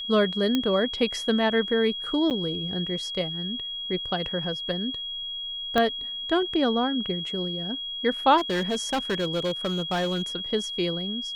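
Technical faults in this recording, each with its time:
whistle 3,300 Hz −31 dBFS
0:00.55: click −11 dBFS
0:02.30–0:02.31: drop-out 8.9 ms
0:05.78: click −10 dBFS
0:08.37–0:10.22: clipping −22 dBFS

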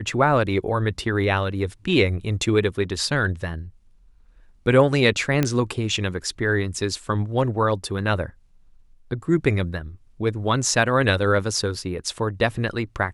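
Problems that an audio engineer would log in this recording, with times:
0:05.43: click −7 dBFS

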